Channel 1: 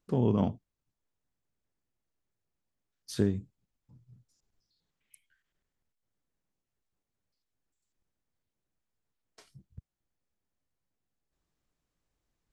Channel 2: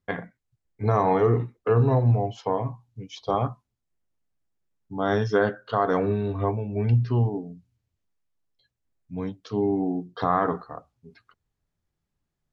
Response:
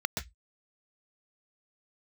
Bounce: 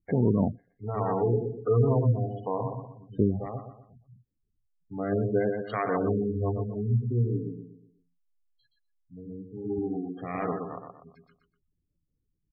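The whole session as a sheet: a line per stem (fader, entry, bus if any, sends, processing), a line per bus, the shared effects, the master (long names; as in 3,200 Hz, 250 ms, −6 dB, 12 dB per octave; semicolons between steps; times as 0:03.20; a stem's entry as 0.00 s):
+3.0 dB, 0.00 s, no send, no echo send, low-pass that shuts in the quiet parts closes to 470 Hz, open at −26.5 dBFS
−2.5 dB, 0.00 s, no send, echo send −5 dB, phase distortion by the signal itself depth 0.16 ms; rotating-speaker cabinet horn 1 Hz; automatic ducking −12 dB, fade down 0.50 s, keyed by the first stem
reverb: not used
echo: repeating echo 122 ms, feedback 38%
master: gate on every frequency bin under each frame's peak −20 dB strong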